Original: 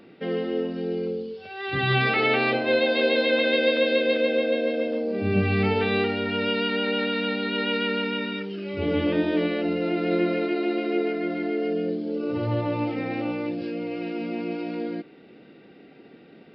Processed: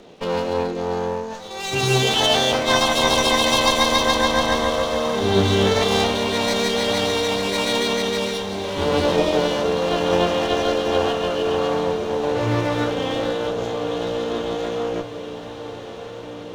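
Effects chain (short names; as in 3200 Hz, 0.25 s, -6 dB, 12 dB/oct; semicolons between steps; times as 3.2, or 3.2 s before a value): minimum comb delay 0.43 ms; formant shift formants +6 st; diffused feedback echo 1.314 s, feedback 68%, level -13 dB; gain +5 dB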